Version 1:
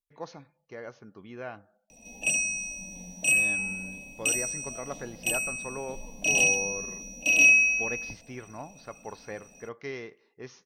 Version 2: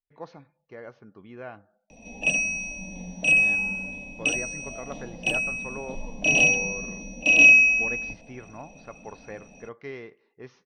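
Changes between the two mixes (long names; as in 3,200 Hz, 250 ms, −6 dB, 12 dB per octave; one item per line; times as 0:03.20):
background +7.5 dB
master: add high-frequency loss of the air 190 metres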